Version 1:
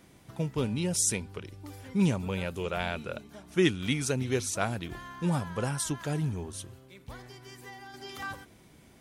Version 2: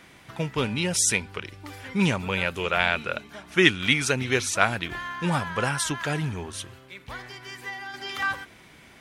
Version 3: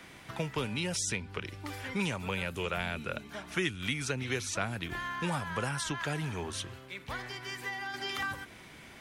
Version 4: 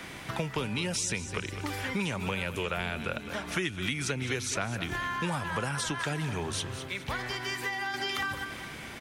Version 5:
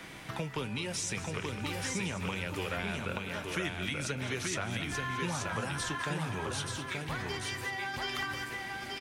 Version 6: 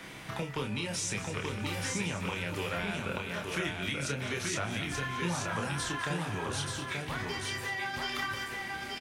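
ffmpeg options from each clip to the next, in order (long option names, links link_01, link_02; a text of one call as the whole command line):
ffmpeg -i in.wav -af "equalizer=frequency=2000:width=0.47:gain=12.5,volume=1dB" out.wav
ffmpeg -i in.wav -filter_complex "[0:a]acrossover=split=120|350|7300[link_01][link_02][link_03][link_04];[link_01]acompressor=threshold=-43dB:ratio=4[link_05];[link_02]acompressor=threshold=-40dB:ratio=4[link_06];[link_03]acompressor=threshold=-34dB:ratio=4[link_07];[link_04]acompressor=threshold=-49dB:ratio=4[link_08];[link_05][link_06][link_07][link_08]amix=inputs=4:normalize=0" out.wav
ffmpeg -i in.wav -af "aecho=1:1:208|416|624|832:0.2|0.0798|0.0319|0.0128,acompressor=threshold=-40dB:ratio=2.5,volume=8.5dB" out.wav
ffmpeg -i in.wav -filter_complex "[0:a]flanger=delay=6.2:depth=5.7:regen=-64:speed=0.26:shape=sinusoidal,asplit=2[link_01][link_02];[link_02]aecho=0:1:881:0.668[link_03];[link_01][link_03]amix=inputs=2:normalize=0" out.wav
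ffmpeg -i in.wav -filter_complex "[0:a]asplit=2[link_01][link_02];[link_02]adelay=29,volume=-5dB[link_03];[link_01][link_03]amix=inputs=2:normalize=0" out.wav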